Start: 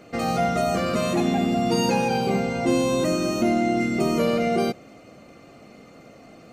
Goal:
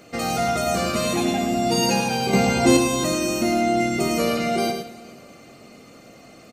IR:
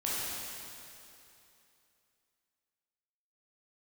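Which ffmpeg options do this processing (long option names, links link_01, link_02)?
-filter_complex "[0:a]highshelf=frequency=3400:gain=9.5,asettb=1/sr,asplit=3[link_01][link_02][link_03];[link_01]atrim=end=2.334[link_04];[link_02]atrim=start=2.33:end=2.77,asetpts=PTS-STARTPTS,afade=type=in:duration=0.004:curve=qsin,afade=type=out:start_time=0.436:duration=0.004:curve=qsin,acontrast=81[link_05];[link_03]atrim=start=2.766[link_06];[link_04][link_05]acrossfade=duration=0.004:curve1=hsin:curve2=qsin[link_07];[link_07][link_06]acrossfade=duration=0.004:curve1=qsin:curve2=hsin,aecho=1:1:106|188:0.473|0.119,asplit=2[link_08][link_09];[1:a]atrim=start_sample=2205[link_10];[link_09][link_10]afir=irnorm=-1:irlink=0,volume=-22dB[link_11];[link_08][link_11]amix=inputs=2:normalize=0,volume=-1.5dB"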